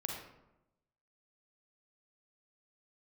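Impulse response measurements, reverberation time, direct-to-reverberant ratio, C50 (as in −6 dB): 0.95 s, 0.0 dB, 1.5 dB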